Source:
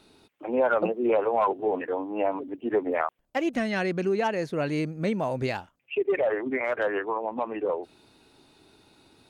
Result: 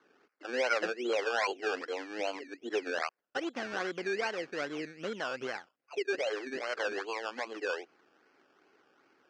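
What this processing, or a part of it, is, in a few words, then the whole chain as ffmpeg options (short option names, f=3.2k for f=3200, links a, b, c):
circuit-bent sampling toy: -filter_complex "[0:a]asettb=1/sr,asplit=3[a][b][c];[a]atrim=end=4.604[d];[b]atrim=start=4.6:end=6.73,asetpts=PTS-STARTPTS,afade=t=in:d=0.004:c=qsin,afade=t=out:st=2.126:d=0.004:c=qsin,highshelf=f=4.4k:g=-10[e];[c]atrim=start=6.726[f];[d][e]acrossfade=d=0.004:c1=hsin:c2=qsin[g];[g][f]acrossfade=d=0.004:c1=qsin:c2=hsin,acrusher=samples=17:mix=1:aa=0.000001:lfo=1:lforange=10.2:lforate=2.5,highpass=430,equalizer=f=630:t=q:w=4:g=-5,equalizer=f=940:t=q:w=4:g=-7,equalizer=f=1.5k:t=q:w=4:g=4,equalizer=f=3.7k:t=q:w=4:g=-9,lowpass=f=5.2k:w=0.5412,lowpass=f=5.2k:w=1.3066,volume=-4dB"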